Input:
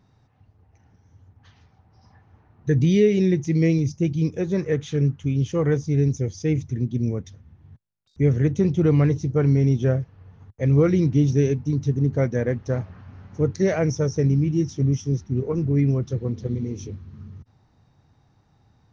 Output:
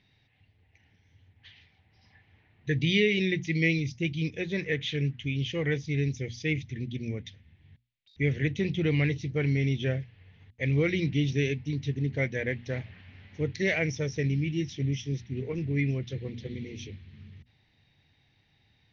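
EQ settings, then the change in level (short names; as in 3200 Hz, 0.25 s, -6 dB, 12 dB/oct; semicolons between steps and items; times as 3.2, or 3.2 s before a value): synth low-pass 3500 Hz, resonance Q 2.1; resonant high shelf 1600 Hz +8 dB, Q 3; notches 60/120/180/240 Hz; -8.0 dB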